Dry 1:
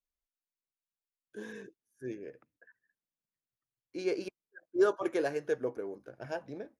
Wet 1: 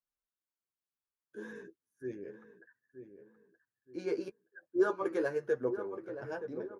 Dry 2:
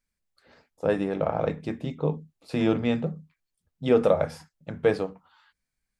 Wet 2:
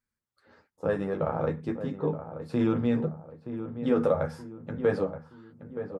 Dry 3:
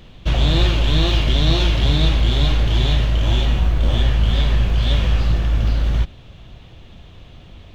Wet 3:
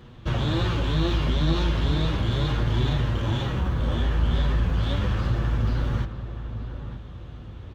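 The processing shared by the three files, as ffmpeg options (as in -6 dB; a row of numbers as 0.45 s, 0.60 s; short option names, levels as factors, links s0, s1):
-filter_complex "[0:a]highpass=43,equalizer=f=680:w=4.1:g=-7,flanger=delay=8.1:depth=4.4:regen=-12:speed=0.35:shape=sinusoidal,asplit=2[s0][s1];[s1]alimiter=limit=0.0944:level=0:latency=1,volume=1.26[s2];[s0][s2]amix=inputs=2:normalize=0,highshelf=f=1900:t=q:w=1.5:g=-6,asplit=2[s3][s4];[s4]adelay=923,lowpass=f=1400:p=1,volume=0.316,asplit=2[s5][s6];[s6]adelay=923,lowpass=f=1400:p=1,volume=0.41,asplit=2[s7][s8];[s8]adelay=923,lowpass=f=1400:p=1,volume=0.41,asplit=2[s9][s10];[s10]adelay=923,lowpass=f=1400:p=1,volume=0.41[s11];[s5][s7][s9][s11]amix=inputs=4:normalize=0[s12];[s3][s12]amix=inputs=2:normalize=0,volume=0.596"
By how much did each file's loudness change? -1.5 LU, -3.0 LU, -7.0 LU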